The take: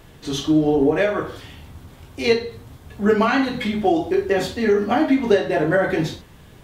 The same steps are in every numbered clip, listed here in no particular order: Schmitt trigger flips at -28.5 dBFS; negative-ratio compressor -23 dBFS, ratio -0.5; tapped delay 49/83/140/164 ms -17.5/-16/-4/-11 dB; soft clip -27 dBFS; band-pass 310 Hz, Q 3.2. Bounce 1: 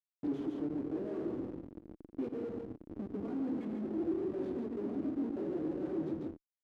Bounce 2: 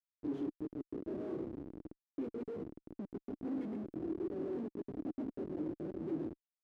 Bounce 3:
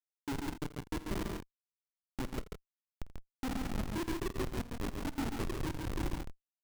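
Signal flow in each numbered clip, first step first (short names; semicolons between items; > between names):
negative-ratio compressor > Schmitt trigger > tapped delay > soft clip > band-pass; tapped delay > negative-ratio compressor > soft clip > Schmitt trigger > band-pass; negative-ratio compressor > band-pass > soft clip > Schmitt trigger > tapped delay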